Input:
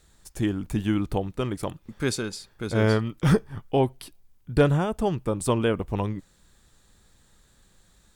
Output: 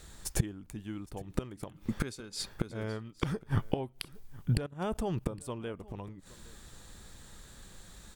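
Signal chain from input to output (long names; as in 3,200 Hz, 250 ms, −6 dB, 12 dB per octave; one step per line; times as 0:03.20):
0:04.57–0:05.27: output level in coarse steps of 20 dB
gate with flip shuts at −22 dBFS, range −24 dB
single-tap delay 814 ms −22 dB
level +8 dB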